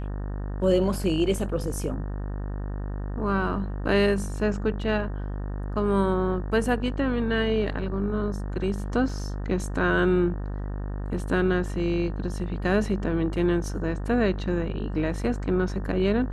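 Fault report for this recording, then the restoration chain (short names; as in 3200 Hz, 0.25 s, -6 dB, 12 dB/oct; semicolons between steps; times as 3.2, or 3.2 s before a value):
buzz 50 Hz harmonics 37 -31 dBFS
9.09 gap 2.2 ms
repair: de-hum 50 Hz, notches 37; interpolate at 9.09, 2.2 ms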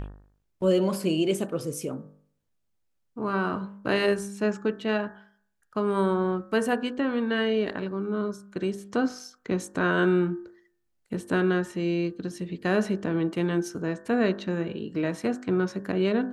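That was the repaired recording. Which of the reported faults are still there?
none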